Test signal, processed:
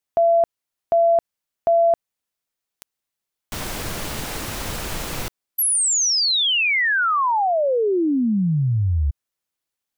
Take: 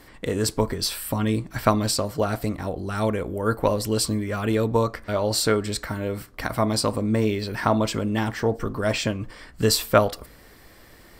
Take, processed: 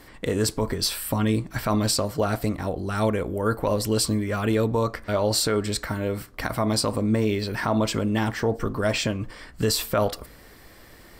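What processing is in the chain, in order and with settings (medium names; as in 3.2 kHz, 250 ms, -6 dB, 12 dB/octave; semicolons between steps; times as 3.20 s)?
peak limiter -13.5 dBFS; trim +1 dB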